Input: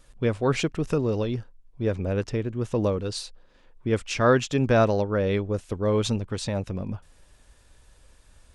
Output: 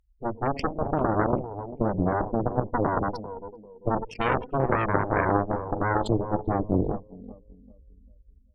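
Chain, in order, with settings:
adaptive Wiener filter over 41 samples
feedback delay network reverb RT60 0.61 s, low-frequency decay 1.2×, high-frequency decay 0.75×, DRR 16 dB
gate on every frequency bin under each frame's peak −10 dB strong
parametric band 130 Hz −9.5 dB 1.6 octaves
harmonic and percussive parts rebalanced harmonic +9 dB
0:02.39–0:04.05: EQ curve with evenly spaced ripples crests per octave 0.86, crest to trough 15 dB
automatic gain control gain up to 13 dB
brickwall limiter −12 dBFS, peak gain reduction 10.5 dB
high-pass filter 51 Hz 12 dB per octave
delay with a band-pass on its return 394 ms, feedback 32%, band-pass 450 Hz, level −7.5 dB
harmonic generator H 3 −7 dB, 4 −13 dB, 5 −42 dB, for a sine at −8.5 dBFS

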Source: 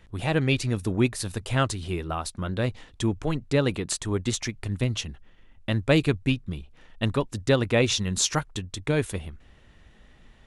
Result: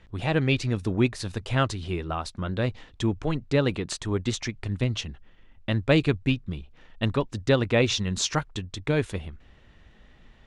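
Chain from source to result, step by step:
low-pass filter 5,800 Hz 12 dB per octave

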